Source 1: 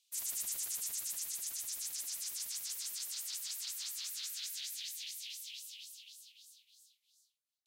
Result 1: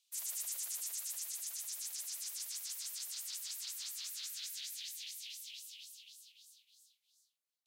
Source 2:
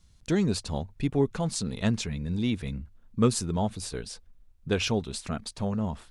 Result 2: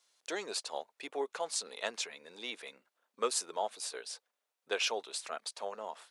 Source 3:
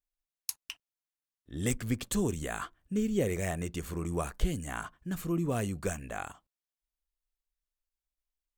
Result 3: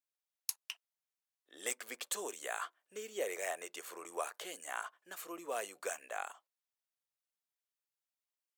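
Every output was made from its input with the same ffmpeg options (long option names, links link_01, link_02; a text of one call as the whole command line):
ffmpeg -i in.wav -af "highpass=frequency=500:width=0.5412,highpass=frequency=500:width=1.3066,volume=-2dB" out.wav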